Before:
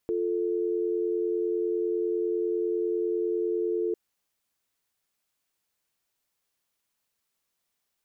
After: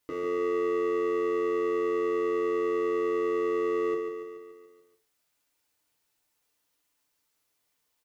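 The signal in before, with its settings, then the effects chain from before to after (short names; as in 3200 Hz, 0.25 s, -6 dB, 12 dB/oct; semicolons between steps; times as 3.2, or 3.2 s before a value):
call progress tone dial tone, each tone -27.5 dBFS 3.85 s
hard clip -32.5 dBFS; on a send: feedback echo 0.143 s, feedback 58%, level -7.5 dB; on the sum: FDN reverb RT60 0.36 s, low-frequency decay 0.75×, high-frequency decay 0.8×, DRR 0.5 dB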